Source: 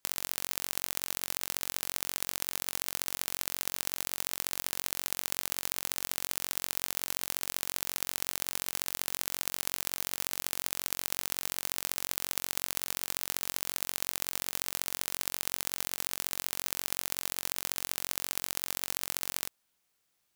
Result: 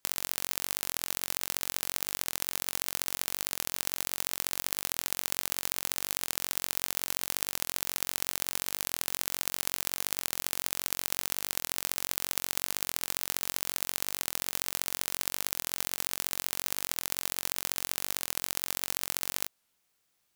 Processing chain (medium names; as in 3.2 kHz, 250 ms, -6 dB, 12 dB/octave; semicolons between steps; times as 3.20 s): warped record 45 rpm, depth 160 cents; trim +1.5 dB